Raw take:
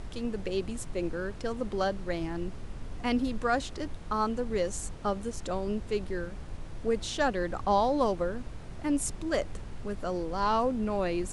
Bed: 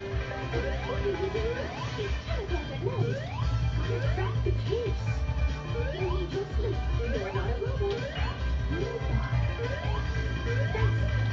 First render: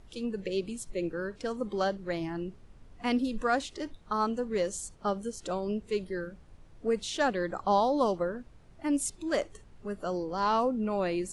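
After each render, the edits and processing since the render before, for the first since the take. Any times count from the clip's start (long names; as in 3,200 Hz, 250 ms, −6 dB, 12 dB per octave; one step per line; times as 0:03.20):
noise reduction from a noise print 14 dB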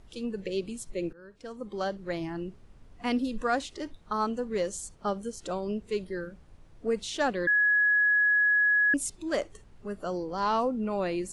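0:01.13–0:02.10: fade in, from −21.5 dB
0:07.47–0:08.94: beep over 1,680 Hz −20 dBFS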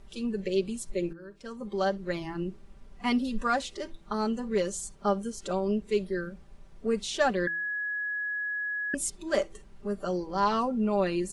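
comb filter 5.1 ms, depth 70%
hum removal 165.7 Hz, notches 3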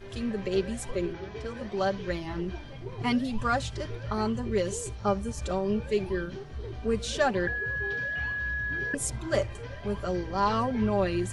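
mix in bed −9 dB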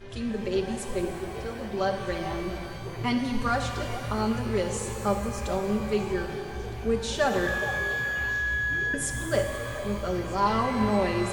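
echo through a band-pass that steps 420 ms, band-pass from 750 Hz, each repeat 1.4 octaves, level −10.5 dB
reverb with rising layers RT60 2.6 s, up +12 semitones, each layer −8 dB, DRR 5 dB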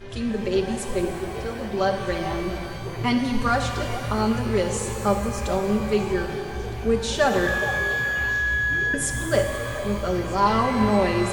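level +4.5 dB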